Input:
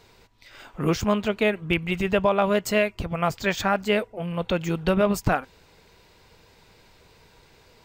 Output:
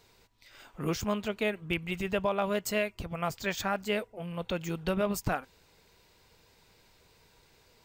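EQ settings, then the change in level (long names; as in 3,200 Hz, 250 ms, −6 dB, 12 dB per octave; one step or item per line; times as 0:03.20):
high-shelf EQ 5,400 Hz +7.5 dB
−8.5 dB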